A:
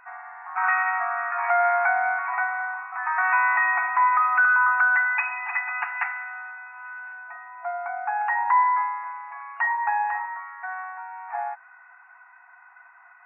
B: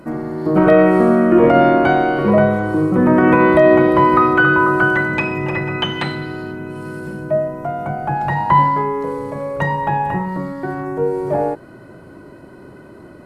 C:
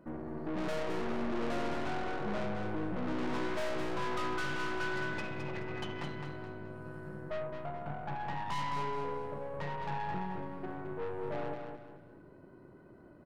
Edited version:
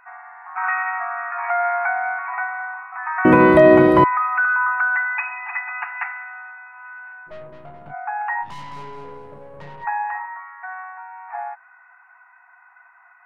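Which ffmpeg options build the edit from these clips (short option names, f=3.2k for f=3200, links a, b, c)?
-filter_complex "[2:a]asplit=2[a][b];[0:a]asplit=4[c][d][e][f];[c]atrim=end=3.252[g];[1:a]atrim=start=3.248:end=4.042[h];[d]atrim=start=4.038:end=7.32[i];[a]atrim=start=7.26:end=7.95[j];[e]atrim=start=7.89:end=8.47[k];[b]atrim=start=8.41:end=9.87[l];[f]atrim=start=9.81[m];[g][h]acrossfade=d=0.004:c1=hsin:c2=hsin[n];[n][i]acrossfade=d=0.004:c1=hsin:c2=hsin[o];[o][j]acrossfade=d=0.06:c1=tri:c2=tri[p];[p][k]acrossfade=d=0.06:c1=tri:c2=tri[q];[q][l]acrossfade=d=0.06:c1=tri:c2=tri[r];[r][m]acrossfade=d=0.06:c1=tri:c2=tri"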